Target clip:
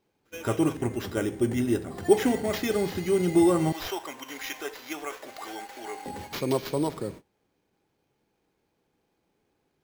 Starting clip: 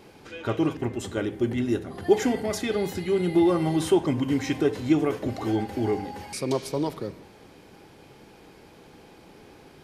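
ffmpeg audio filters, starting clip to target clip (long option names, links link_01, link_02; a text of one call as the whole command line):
ffmpeg -i in.wav -filter_complex "[0:a]agate=range=-24dB:threshold=-40dB:ratio=16:detection=peak,asettb=1/sr,asplit=3[link_01][link_02][link_03];[link_01]atrim=end=3.724[link_04];[link_02]atrim=start=3.72:end=6.06,asetpts=PTS-STARTPTS,afade=type=in:duration=0.004:curve=qsin,afade=type=out:start_time=2.336:duration=0.004:curve=qsin,highpass=910[link_05];[link_03]atrim=start=6.056[link_06];[link_04][link_05]acrossfade=duration=0.004:curve1=hsin:curve2=qsin[link_07];[link_07][link_06]acrossfade=duration=0.004:curve1=qsin:curve2=hsin,acrusher=samples=5:mix=1:aa=0.000001" out.wav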